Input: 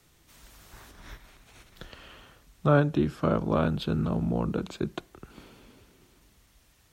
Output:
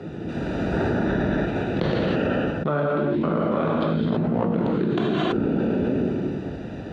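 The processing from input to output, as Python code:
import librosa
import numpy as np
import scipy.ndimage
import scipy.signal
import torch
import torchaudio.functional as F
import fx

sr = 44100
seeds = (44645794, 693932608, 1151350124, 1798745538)

y = fx.wiener(x, sr, points=41)
y = fx.bandpass_edges(y, sr, low_hz=170.0, high_hz=3800.0)
y = fx.rev_gated(y, sr, seeds[0], gate_ms=350, shape='flat', drr_db=-2.5)
y = fx.env_flatten(y, sr, amount_pct=100)
y = y * librosa.db_to_amplitude(-4.5)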